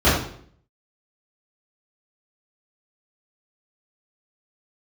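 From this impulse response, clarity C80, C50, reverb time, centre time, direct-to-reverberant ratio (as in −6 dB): 6.0 dB, 2.5 dB, 0.60 s, 51 ms, −14.0 dB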